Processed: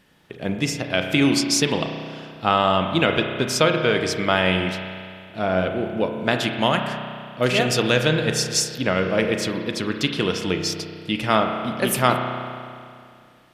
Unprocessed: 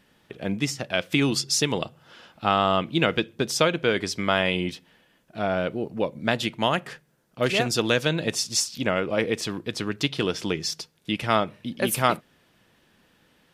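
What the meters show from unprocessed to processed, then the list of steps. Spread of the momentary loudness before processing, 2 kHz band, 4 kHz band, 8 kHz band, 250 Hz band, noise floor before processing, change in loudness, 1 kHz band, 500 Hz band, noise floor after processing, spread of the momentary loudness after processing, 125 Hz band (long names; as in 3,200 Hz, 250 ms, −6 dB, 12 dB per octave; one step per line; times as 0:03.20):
8 LU, +4.0 dB, +3.0 dB, +2.5 dB, +4.5 dB, −63 dBFS, +3.5 dB, +3.5 dB, +4.0 dB, −49 dBFS, 12 LU, +4.5 dB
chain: spring reverb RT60 2.3 s, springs 32 ms, chirp 30 ms, DRR 4.5 dB
level +2.5 dB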